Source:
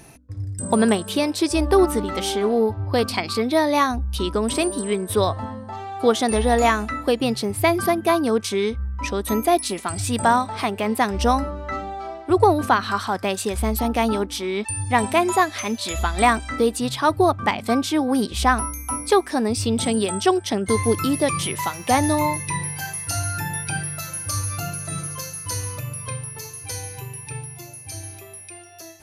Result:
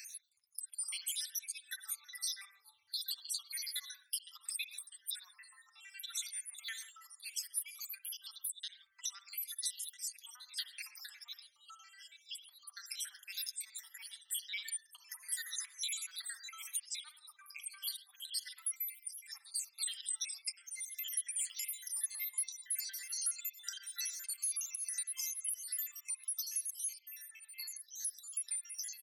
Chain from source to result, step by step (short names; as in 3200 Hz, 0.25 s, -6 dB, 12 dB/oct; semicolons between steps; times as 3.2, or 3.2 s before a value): random spectral dropouts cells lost 74%; auto swell 0.243 s; dynamic EQ 2700 Hz, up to -6 dB, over -56 dBFS, Q 3.8; limiter -24 dBFS, peak gain reduction 11.5 dB; high shelf 5000 Hz +11.5 dB; comb 6.6 ms, depth 41%; compressor 2.5:1, threshold -42 dBFS, peak gain reduction 14 dB; inverse Chebyshev high-pass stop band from 580 Hz, stop band 60 dB; reverb, pre-delay 50 ms, DRR 9 dB; gain +2 dB